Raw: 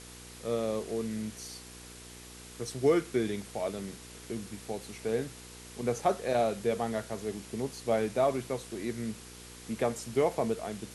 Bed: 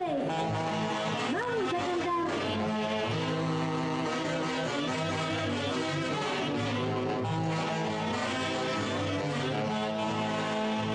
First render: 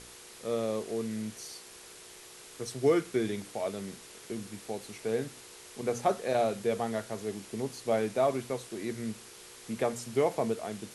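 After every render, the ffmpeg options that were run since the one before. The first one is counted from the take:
-af "bandreject=f=60:t=h:w=4,bandreject=f=120:t=h:w=4,bandreject=f=180:t=h:w=4,bandreject=f=240:t=h:w=4,bandreject=f=300:t=h:w=4"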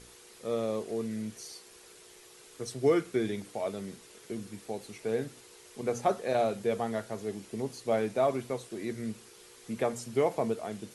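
-af "afftdn=nr=6:nf=-51"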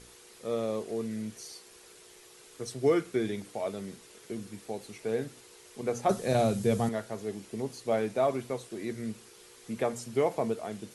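-filter_complex "[0:a]asettb=1/sr,asplit=3[a][b][c];[a]atrim=end=6.094[d];[b]atrim=start=6.09:end=6.89,asetpts=PTS-STARTPTS,afade=t=in:d=0.004:c=qsin,afade=t=out:st=0.796:d=0.004:c=qsin,bass=f=250:g=14,treble=f=4k:g=9[e];[c]atrim=start=6.886[f];[d][e]acrossfade=d=0.004:c1=hsin:c2=qsin[g];[g][f]acrossfade=d=0.004:c1=qsin:c2=hsin"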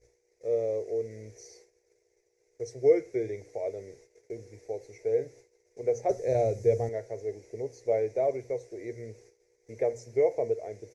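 -af "agate=range=-17dB:threshold=-51dB:ratio=16:detection=peak,firequalizer=gain_entry='entry(110,0);entry(190,-21);entry(320,-5);entry(470,6);entry(1200,-23);entry(2100,-1);entry(3000,-26);entry(5900,-2);entry(8900,-21)':delay=0.05:min_phase=1"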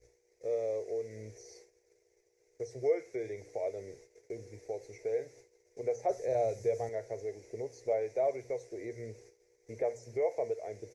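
-filter_complex "[0:a]acrossover=split=560|1400[a][b][c];[a]acompressor=threshold=-40dB:ratio=6[d];[c]alimiter=level_in=23dB:limit=-24dB:level=0:latency=1:release=29,volume=-23dB[e];[d][b][e]amix=inputs=3:normalize=0"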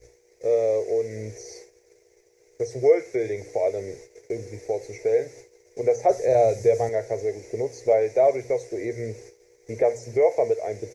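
-af "volume=12dB"

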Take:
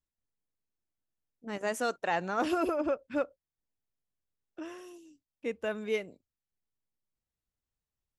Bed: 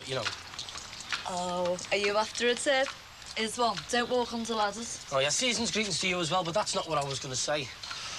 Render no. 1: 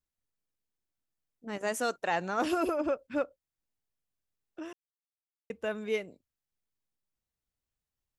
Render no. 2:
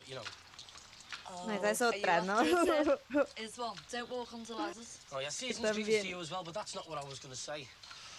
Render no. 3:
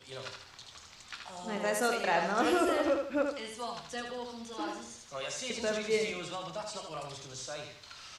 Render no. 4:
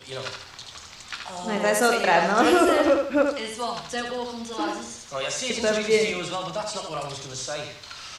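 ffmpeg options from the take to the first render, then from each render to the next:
-filter_complex "[0:a]asettb=1/sr,asplit=3[a][b][c];[a]atrim=end=1.604[d];[b]atrim=start=1.6:end=3.07,asetpts=PTS-STARTPTS,afade=t=in:d=0.004:c=qsin,afade=t=out:st=1.466:d=0.004:c=qsin,highshelf=f=5.3k:g=4.5[e];[c]atrim=start=3.066[f];[d][e]acrossfade=d=0.004:c1=hsin:c2=qsin[g];[g][f]acrossfade=d=0.004:c1=qsin:c2=hsin,asplit=3[h][i][j];[h]atrim=end=4.73,asetpts=PTS-STARTPTS,afade=t=out:st=4.726:d=0.004:c=hsin[k];[i]atrim=start=4.73:end=5.5,asetpts=PTS-STARTPTS,volume=0[l];[j]atrim=start=5.5,asetpts=PTS-STARTPTS,afade=t=in:d=0.004:c=hsin[m];[k][l][m]concat=n=3:v=0:a=1"
-filter_complex "[1:a]volume=-12dB[a];[0:a][a]amix=inputs=2:normalize=0"
-filter_complex "[0:a]asplit=2[a][b];[b]adelay=25,volume=-12dB[c];[a][c]amix=inputs=2:normalize=0,asplit=2[d][e];[e]aecho=0:1:78|156|234|312|390:0.562|0.208|0.077|0.0285|0.0105[f];[d][f]amix=inputs=2:normalize=0"
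-af "volume=9.5dB"

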